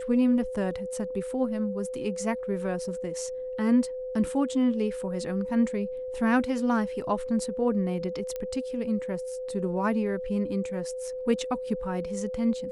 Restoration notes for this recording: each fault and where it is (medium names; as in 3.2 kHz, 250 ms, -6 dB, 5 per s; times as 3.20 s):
whine 510 Hz -32 dBFS
8.36 s: pop -21 dBFS